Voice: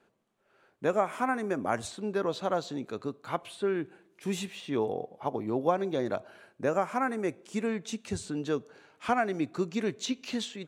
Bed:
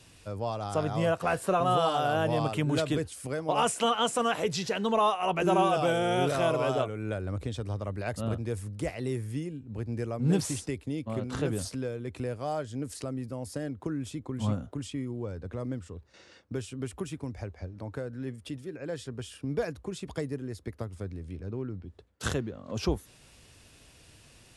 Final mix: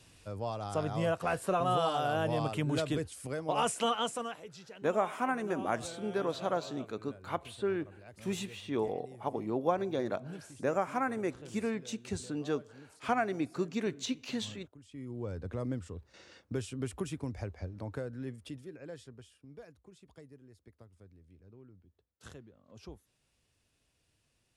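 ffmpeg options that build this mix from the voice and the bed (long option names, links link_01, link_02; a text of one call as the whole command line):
ffmpeg -i stem1.wav -i stem2.wav -filter_complex "[0:a]adelay=4000,volume=-3dB[link_01];[1:a]volume=14.5dB,afade=type=out:start_time=3.92:duration=0.49:silence=0.16788,afade=type=in:start_time=14.87:duration=0.47:silence=0.11885,afade=type=out:start_time=17.75:duration=1.64:silence=0.112202[link_02];[link_01][link_02]amix=inputs=2:normalize=0" out.wav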